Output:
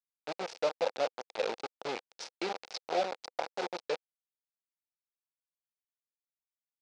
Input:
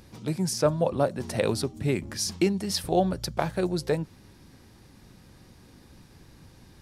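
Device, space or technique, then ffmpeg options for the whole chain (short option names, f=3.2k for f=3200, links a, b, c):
hand-held game console: -af "acrusher=bits=3:mix=0:aa=0.000001,highpass=490,equalizer=f=500:t=q:w=4:g=6,equalizer=f=800:t=q:w=4:g=4,equalizer=f=1.1k:t=q:w=4:g=-4,equalizer=f=1.8k:t=q:w=4:g=-5,equalizer=f=3.1k:t=q:w=4:g=-3,lowpass=f=5.3k:w=0.5412,lowpass=f=5.3k:w=1.3066,volume=-8dB"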